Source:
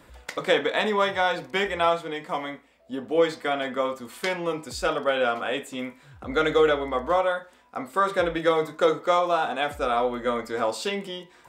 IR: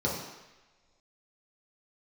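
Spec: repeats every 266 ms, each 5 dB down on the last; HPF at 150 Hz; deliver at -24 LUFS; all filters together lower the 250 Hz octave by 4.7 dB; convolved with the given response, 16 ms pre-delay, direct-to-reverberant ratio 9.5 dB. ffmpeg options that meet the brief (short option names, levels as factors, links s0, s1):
-filter_complex "[0:a]highpass=150,equalizer=f=250:t=o:g=-6,aecho=1:1:266|532|798|1064|1330|1596|1862:0.562|0.315|0.176|0.0988|0.0553|0.031|0.0173,asplit=2[s0][s1];[1:a]atrim=start_sample=2205,adelay=16[s2];[s1][s2]afir=irnorm=-1:irlink=0,volume=0.112[s3];[s0][s3]amix=inputs=2:normalize=0,volume=0.944"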